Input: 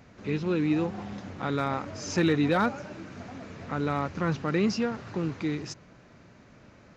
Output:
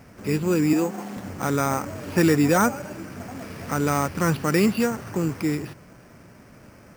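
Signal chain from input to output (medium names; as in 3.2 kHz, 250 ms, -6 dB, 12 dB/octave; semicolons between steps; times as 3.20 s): 0.73–1.17 s: high-pass 190 Hz 24 dB/octave; 3.39–4.87 s: treble shelf 3.4 kHz +9.5 dB; careless resampling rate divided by 6×, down filtered, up hold; trim +5.5 dB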